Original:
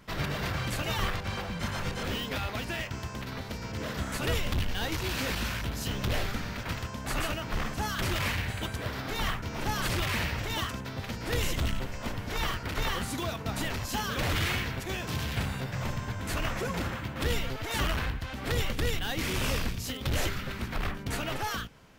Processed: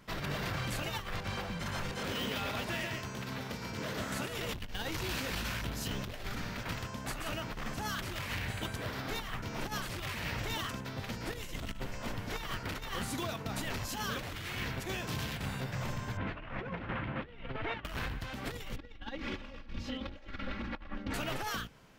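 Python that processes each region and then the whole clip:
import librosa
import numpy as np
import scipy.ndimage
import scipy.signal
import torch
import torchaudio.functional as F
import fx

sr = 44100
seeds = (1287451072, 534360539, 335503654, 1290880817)

y = fx.chain(x, sr, fx.highpass(hz=100.0, slope=6),
    fx.echo_single(ms=138, db=-3.5), at=(1.9, 4.54))
y = fx.chain(y, sr, fx.lowpass(hz=2900.0, slope=24),
    fx.over_compress(threshold_db=-35.0, ratio=-0.5), at=(16.17, 17.85))
y = fx.chain(y, sr, fx.air_absorb(metres=230.0),
    fx.comb(ms=3.6, depth=0.95), at=(18.76, 21.14))
y = fx.peak_eq(y, sr, hz=72.0, db=-10.5, octaves=0.31)
y = fx.over_compress(y, sr, threshold_db=-32.0, ratio=-0.5)
y = y * 10.0 ** (-4.5 / 20.0)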